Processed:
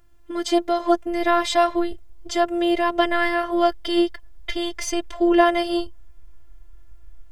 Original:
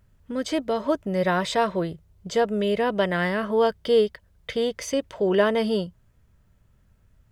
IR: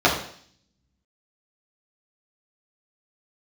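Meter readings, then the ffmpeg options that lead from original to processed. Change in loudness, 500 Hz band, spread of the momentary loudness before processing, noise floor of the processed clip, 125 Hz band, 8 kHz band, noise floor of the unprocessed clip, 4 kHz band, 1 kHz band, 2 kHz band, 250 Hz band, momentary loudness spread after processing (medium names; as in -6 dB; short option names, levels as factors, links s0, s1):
+2.5 dB, 0.0 dB, 10 LU, -42 dBFS, under -15 dB, +5.0 dB, -61 dBFS, +4.5 dB, +6.0 dB, +3.5 dB, +5.0 dB, 10 LU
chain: -af "afftfilt=real='hypot(re,im)*cos(PI*b)':imag='0':win_size=512:overlap=0.75,asubboost=boost=7.5:cutoff=60,volume=2.51"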